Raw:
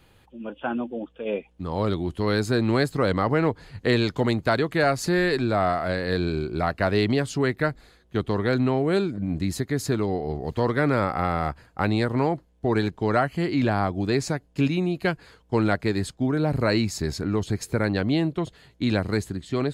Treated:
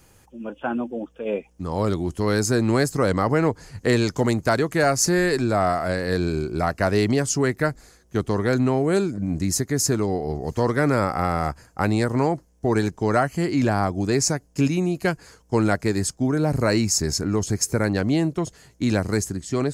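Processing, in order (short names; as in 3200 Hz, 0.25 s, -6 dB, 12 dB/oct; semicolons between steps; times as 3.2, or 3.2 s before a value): resonant high shelf 4700 Hz +7.5 dB, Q 3; gain +2 dB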